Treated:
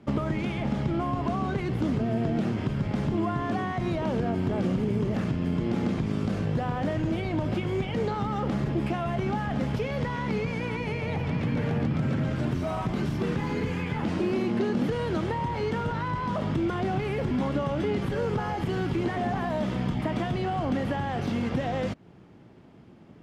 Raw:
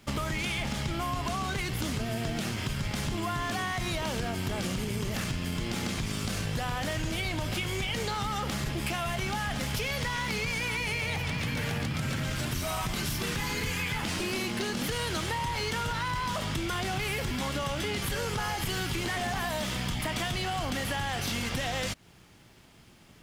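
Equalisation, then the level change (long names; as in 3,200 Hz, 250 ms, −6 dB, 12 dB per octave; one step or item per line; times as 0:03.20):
resonant band-pass 280 Hz, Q 0.66
+8.5 dB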